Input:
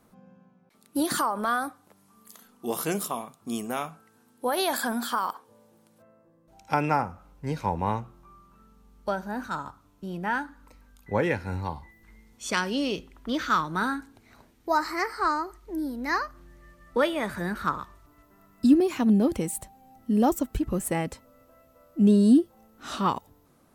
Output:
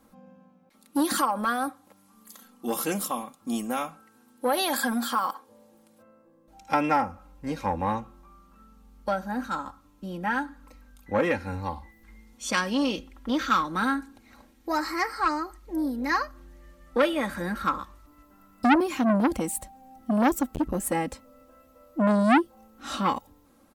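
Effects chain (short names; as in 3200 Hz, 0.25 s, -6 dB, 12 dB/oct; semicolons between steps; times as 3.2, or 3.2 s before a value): comb 3.7 ms, depth 69%; core saturation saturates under 1200 Hz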